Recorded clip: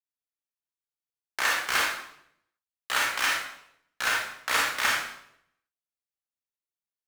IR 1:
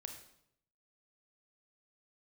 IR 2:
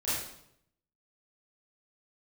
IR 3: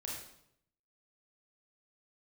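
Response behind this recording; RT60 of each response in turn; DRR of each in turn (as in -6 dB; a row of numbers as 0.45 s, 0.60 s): 3; 0.75 s, 0.75 s, 0.75 s; 4.5 dB, -12.5 dB, -3.5 dB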